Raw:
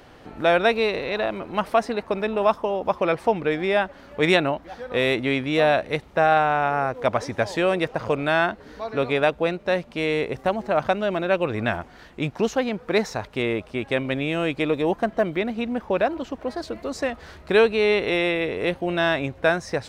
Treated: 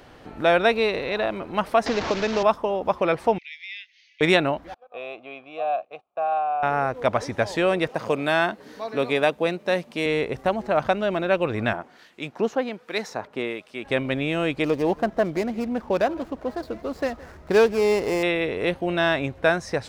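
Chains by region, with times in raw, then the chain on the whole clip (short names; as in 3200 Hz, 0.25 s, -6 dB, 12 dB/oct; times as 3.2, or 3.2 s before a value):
1.86–2.43 delta modulation 32 kbps, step -24 dBFS + three-band squash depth 70%
3.38–4.21 Chebyshev band-pass 2000–6400 Hz, order 5 + compressor 1.5:1, threshold -42 dBFS
4.74–6.63 gate -34 dBFS, range -16 dB + vowel filter a + bell 2200 Hz -2.5 dB 0.36 oct
7.89–10.06 Chebyshev high-pass 180 Hz + high shelf 5900 Hz +9 dB + notch 1400 Hz, Q 18
11.73–13.85 HPF 200 Hz + harmonic tremolo 1.3 Hz, crossover 1800 Hz
14.64–18.23 median filter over 15 samples + echo 0.166 s -21.5 dB
whole clip: dry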